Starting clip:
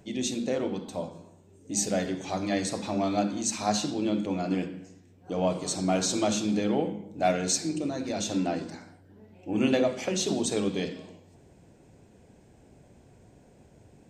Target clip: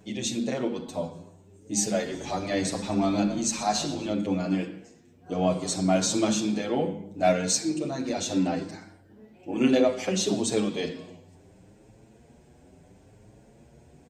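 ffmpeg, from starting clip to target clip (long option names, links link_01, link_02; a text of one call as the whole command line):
ffmpeg -i in.wav -filter_complex "[0:a]asplit=3[link_01][link_02][link_03];[link_01]afade=type=out:start_time=2.09:duration=0.02[link_04];[link_02]asplit=5[link_05][link_06][link_07][link_08][link_09];[link_06]adelay=121,afreqshift=-55,volume=-15.5dB[link_10];[link_07]adelay=242,afreqshift=-110,volume=-21.9dB[link_11];[link_08]adelay=363,afreqshift=-165,volume=-28.3dB[link_12];[link_09]adelay=484,afreqshift=-220,volume=-34.6dB[link_13];[link_05][link_10][link_11][link_12][link_13]amix=inputs=5:normalize=0,afade=type=in:start_time=2.09:duration=0.02,afade=type=out:start_time=4.12:duration=0.02[link_14];[link_03]afade=type=in:start_time=4.12:duration=0.02[link_15];[link_04][link_14][link_15]amix=inputs=3:normalize=0,asplit=2[link_16][link_17];[link_17]adelay=7.4,afreqshift=0.69[link_18];[link_16][link_18]amix=inputs=2:normalize=1,volume=4.5dB" out.wav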